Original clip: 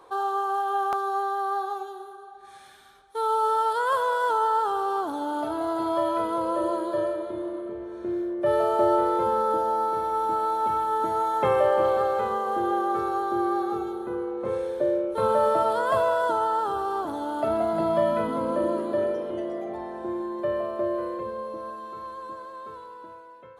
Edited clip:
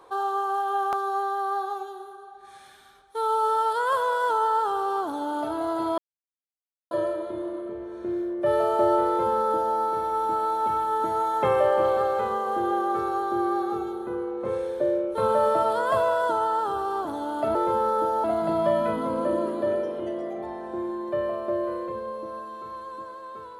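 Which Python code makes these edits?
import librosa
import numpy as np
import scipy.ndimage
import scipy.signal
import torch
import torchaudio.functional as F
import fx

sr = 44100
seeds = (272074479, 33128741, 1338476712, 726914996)

y = fx.edit(x, sr, fx.silence(start_s=5.98, length_s=0.93),
    fx.duplicate(start_s=9.07, length_s=0.69, to_s=17.55), tone=tone)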